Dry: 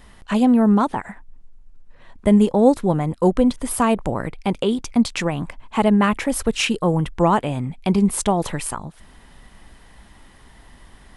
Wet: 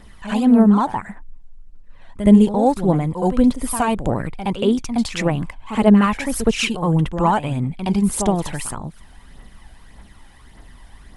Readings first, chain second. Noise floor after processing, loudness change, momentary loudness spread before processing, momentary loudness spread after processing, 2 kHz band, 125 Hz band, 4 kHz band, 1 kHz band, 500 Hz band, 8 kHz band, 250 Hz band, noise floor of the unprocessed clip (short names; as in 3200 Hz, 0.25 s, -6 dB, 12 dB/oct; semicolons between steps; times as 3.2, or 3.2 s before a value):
-45 dBFS, +1.5 dB, 11 LU, 13 LU, 0.0 dB, +2.5 dB, 0.0 dB, +1.0 dB, -0.5 dB, 0.0 dB, +2.0 dB, -48 dBFS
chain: reverse echo 69 ms -9 dB; phaser 1.7 Hz, delay 1.4 ms, feedback 46%; gain -1.5 dB